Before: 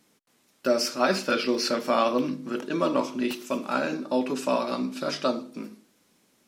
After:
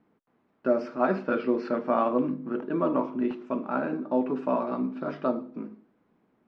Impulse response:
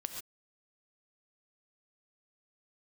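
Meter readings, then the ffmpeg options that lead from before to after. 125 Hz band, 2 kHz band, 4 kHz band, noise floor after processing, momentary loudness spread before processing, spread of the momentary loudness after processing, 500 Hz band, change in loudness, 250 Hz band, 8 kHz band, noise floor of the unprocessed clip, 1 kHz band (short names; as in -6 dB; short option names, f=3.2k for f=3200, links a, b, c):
+0.5 dB, -6.5 dB, under -20 dB, -70 dBFS, 8 LU, 7 LU, -1.0 dB, -1.5 dB, +0.5 dB, under -30 dB, -66 dBFS, -1.5 dB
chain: -af "lowpass=1.3k,aemphasis=mode=reproduction:type=cd,bandreject=f=550:w=12"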